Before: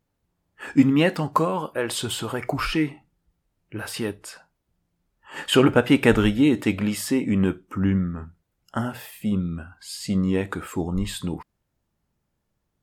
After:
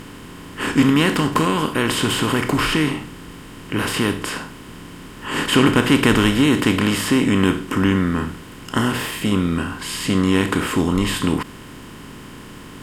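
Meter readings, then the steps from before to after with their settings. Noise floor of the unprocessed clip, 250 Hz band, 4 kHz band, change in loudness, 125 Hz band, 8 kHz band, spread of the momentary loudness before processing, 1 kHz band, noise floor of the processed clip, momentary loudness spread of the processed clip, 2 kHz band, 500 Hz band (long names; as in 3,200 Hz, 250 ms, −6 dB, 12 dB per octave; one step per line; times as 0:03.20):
−77 dBFS, +4.5 dB, +8.5 dB, +4.5 dB, +4.5 dB, +7.0 dB, 17 LU, +6.5 dB, −38 dBFS, 22 LU, +8.0 dB, +2.5 dB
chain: compressor on every frequency bin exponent 0.4
parametric band 570 Hz −10 dB 0.89 octaves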